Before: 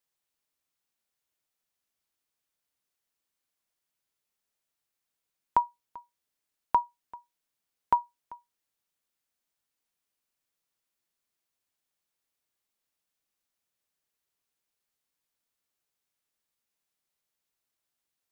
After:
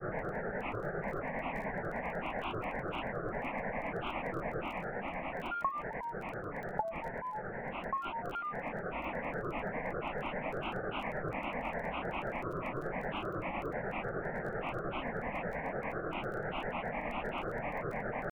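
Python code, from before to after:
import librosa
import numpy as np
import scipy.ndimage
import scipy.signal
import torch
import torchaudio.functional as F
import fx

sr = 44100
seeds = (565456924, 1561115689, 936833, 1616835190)

y = fx.delta_mod(x, sr, bps=32000, step_db=-29.0)
y = scipy.signal.sosfilt(scipy.signal.butter(12, 2000.0, 'lowpass', fs=sr, output='sos'), y)
y = fx.notch(y, sr, hz=1300.0, q=7.0)
y = fx.rider(y, sr, range_db=10, speed_s=2.0)
y = fx.fixed_phaser(y, sr, hz=330.0, stages=6)
y = fx.granulator(y, sr, seeds[0], grain_ms=148.0, per_s=10.0, spray_ms=100.0, spread_st=7)
y = fx.dmg_crackle(y, sr, seeds[1], per_s=17.0, level_db=-52.0)
y = fx.env_flatten(y, sr, amount_pct=50)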